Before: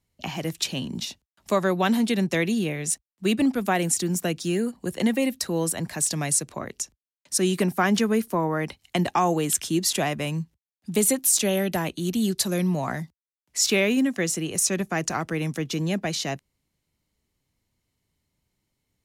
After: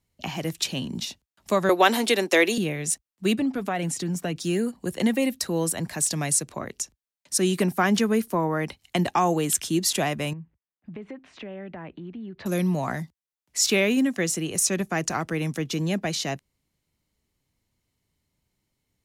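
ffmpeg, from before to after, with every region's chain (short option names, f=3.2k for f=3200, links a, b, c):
-filter_complex "[0:a]asettb=1/sr,asplit=3[a][b][c];[a]atrim=end=1.694[d];[b]atrim=start=1.69:end=2.58,asetpts=PTS-STARTPTS,afade=t=in:d=0.004:c=qsin,afade=t=out:st=0.886:d=0.004:c=qsin,highpass=f=330:w=0.5412,highpass=f=330:w=1.3066,acontrast=78[e];[c]atrim=start=2.576[f];[d][e]acrossfade=d=0.004:c1=hsin:c2=qsin[g];[g][f]acrossfade=d=0.004:c1=qsin:c2=hsin,asettb=1/sr,asplit=3[h][i][j];[h]atrim=end=3.394[k];[i]atrim=start=3.39:end=4.36,asetpts=PTS-STARTPTS,afade=t=in:d=0.004:c=qsin,afade=t=out:st=0.966:d=0.004:c=qsin,lowpass=f=3.4k:p=1,aecho=1:1:7:0.36,atrim=end_sample=42777,acompressor=threshold=-24dB:ratio=2.5:attack=3.2:release=140:knee=1:detection=peak[l];[j]atrim=start=4.356[m];[k][l]acrossfade=d=0.004:c1=hsin:c2=qsin[n];[n][m]acrossfade=d=0.004:c1=qsin:c2=hsin,asettb=1/sr,asplit=3[o][p][q];[o]atrim=end=10.334[r];[p]atrim=start=10.33:end=12.46,asetpts=PTS-STARTPTS,afade=t=in:d=0.004:c=qsin,afade=t=out:st=2.126:d=0.004:c=qsin,lowpass=f=2.3k:w=0.5412,lowpass=f=2.3k:w=1.3066,acompressor=threshold=-37dB:ratio=4:attack=3.2:release=140:knee=1:detection=peak[s];[q]atrim=start=12.456[t];[r][s]acrossfade=d=0.004:c1=hsin:c2=qsin[u];[u][t]acrossfade=d=0.004:c1=qsin:c2=hsin"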